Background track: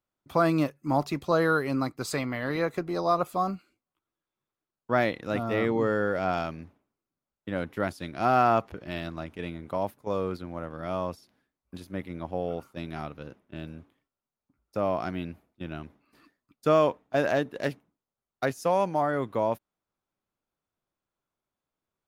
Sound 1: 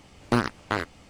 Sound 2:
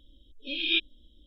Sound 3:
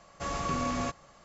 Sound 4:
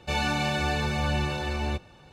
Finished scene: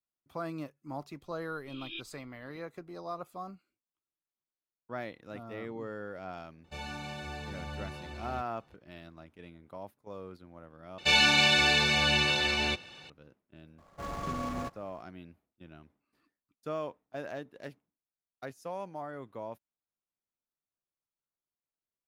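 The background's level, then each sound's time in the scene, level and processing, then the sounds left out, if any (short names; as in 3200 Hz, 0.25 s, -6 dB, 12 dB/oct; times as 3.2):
background track -14.5 dB
1.21 add 2 -14.5 dB + high shelf 4800 Hz -9 dB
6.64 add 4 -14 dB
10.98 replace with 4 -1 dB + weighting filter D
13.78 add 3 -3.5 dB + median filter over 15 samples
not used: 1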